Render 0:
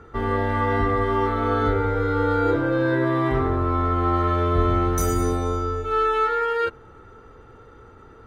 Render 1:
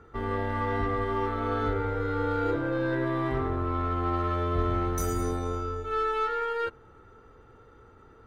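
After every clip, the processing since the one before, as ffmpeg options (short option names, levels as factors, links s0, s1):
-af "aeval=exprs='0.398*(cos(1*acos(clip(val(0)/0.398,-1,1)))-cos(1*PI/2))+0.01*(cos(8*acos(clip(val(0)/0.398,-1,1)))-cos(8*PI/2))':c=same,volume=0.447"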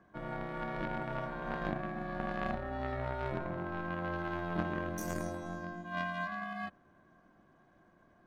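-af "aeval=exprs='0.188*(cos(1*acos(clip(val(0)/0.188,-1,1)))-cos(1*PI/2))+0.0335*(cos(2*acos(clip(val(0)/0.188,-1,1)))-cos(2*PI/2))+0.0376*(cos(3*acos(clip(val(0)/0.188,-1,1)))-cos(3*PI/2))':c=same,aeval=exprs='val(0)*sin(2*PI*260*n/s)':c=same"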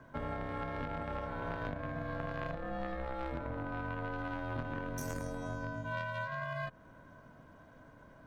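-af "afreqshift=-64,acompressor=threshold=0.00631:ratio=6,volume=2.51"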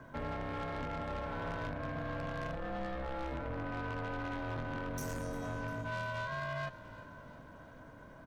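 -filter_complex "[0:a]asoftclip=type=tanh:threshold=0.0126,asplit=6[s0][s1][s2][s3][s4][s5];[s1]adelay=350,afreqshift=-33,volume=0.158[s6];[s2]adelay=700,afreqshift=-66,volume=0.0871[s7];[s3]adelay=1050,afreqshift=-99,volume=0.0479[s8];[s4]adelay=1400,afreqshift=-132,volume=0.0263[s9];[s5]adelay=1750,afreqshift=-165,volume=0.0145[s10];[s0][s6][s7][s8][s9][s10]amix=inputs=6:normalize=0,volume=1.5"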